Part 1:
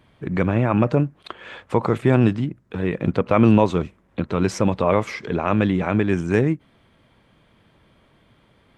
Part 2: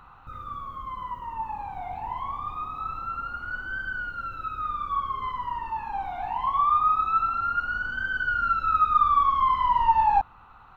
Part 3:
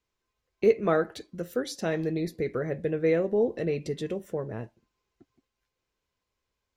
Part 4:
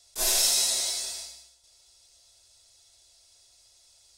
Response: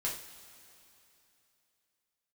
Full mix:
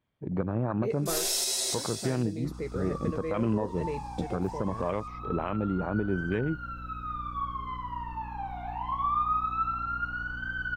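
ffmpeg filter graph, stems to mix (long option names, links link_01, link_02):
-filter_complex "[0:a]afwtdn=0.0447,volume=-7dB,asplit=2[link_01][link_02];[1:a]aeval=exprs='val(0)+0.0178*(sin(2*PI*60*n/s)+sin(2*PI*2*60*n/s)/2+sin(2*PI*3*60*n/s)/3+sin(2*PI*4*60*n/s)/4+sin(2*PI*5*60*n/s)/5)':channel_layout=same,adelay=2450,volume=-6dB[link_03];[2:a]adelay=200,volume=-6dB[link_04];[3:a]equalizer=frequency=380:width_type=o:width=0.61:gain=13,adelay=900,volume=-1dB[link_05];[link_02]apad=whole_len=307029[link_06];[link_04][link_06]sidechaingate=range=-33dB:threshold=-56dB:ratio=16:detection=peak[link_07];[link_01][link_03][link_07][link_05]amix=inputs=4:normalize=0,alimiter=limit=-18dB:level=0:latency=1:release=264"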